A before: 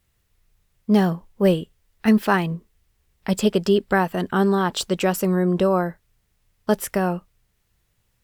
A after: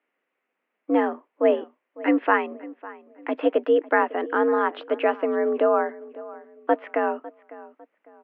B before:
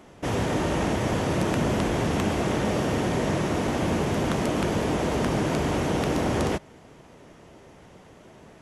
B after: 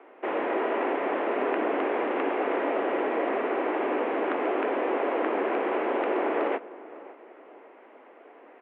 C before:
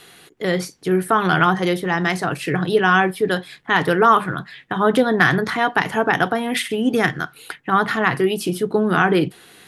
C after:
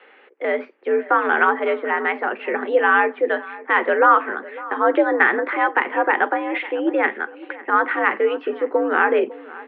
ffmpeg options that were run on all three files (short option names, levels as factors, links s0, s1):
-filter_complex "[0:a]asplit=2[s0][s1];[s1]adelay=552,lowpass=f=1900:p=1,volume=0.126,asplit=2[s2][s3];[s3]adelay=552,lowpass=f=1900:p=1,volume=0.35,asplit=2[s4][s5];[s5]adelay=552,lowpass=f=1900:p=1,volume=0.35[s6];[s0][s2][s4][s6]amix=inputs=4:normalize=0,highpass=f=240:t=q:w=0.5412,highpass=f=240:t=q:w=1.307,lowpass=f=2500:t=q:w=0.5176,lowpass=f=2500:t=q:w=0.7071,lowpass=f=2500:t=q:w=1.932,afreqshift=72"